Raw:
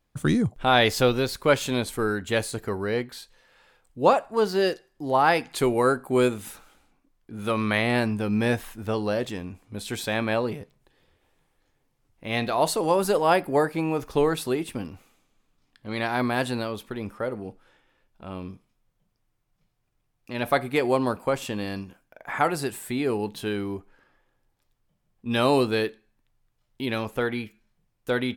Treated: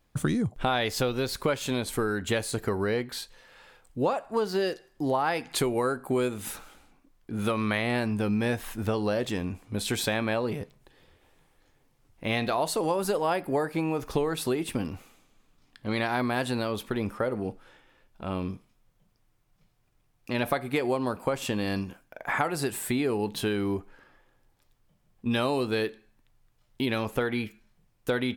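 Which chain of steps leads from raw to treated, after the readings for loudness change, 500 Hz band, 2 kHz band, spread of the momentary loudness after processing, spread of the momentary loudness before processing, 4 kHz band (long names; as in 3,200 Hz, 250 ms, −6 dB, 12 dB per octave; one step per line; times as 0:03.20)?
−4.0 dB, −4.0 dB, −3.5 dB, 9 LU, 16 LU, −3.0 dB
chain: downward compressor 6 to 1, threshold −29 dBFS, peak gain reduction 15 dB
level +5 dB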